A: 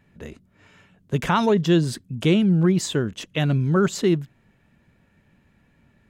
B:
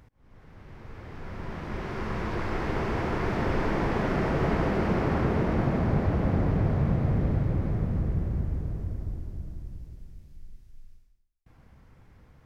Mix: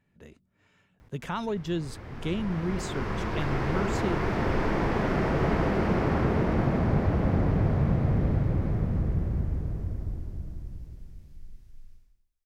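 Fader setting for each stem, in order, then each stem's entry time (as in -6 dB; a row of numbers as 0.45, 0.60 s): -12.0, +0.5 dB; 0.00, 1.00 s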